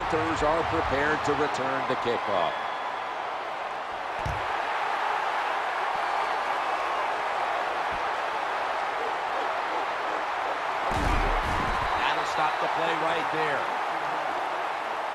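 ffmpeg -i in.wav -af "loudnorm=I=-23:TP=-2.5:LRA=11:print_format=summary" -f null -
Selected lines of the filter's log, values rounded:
Input Integrated:    -27.5 LUFS
Input True Peak:     -10.2 dBTP
Input LRA:             1.9 LU
Input Threshold:     -37.5 LUFS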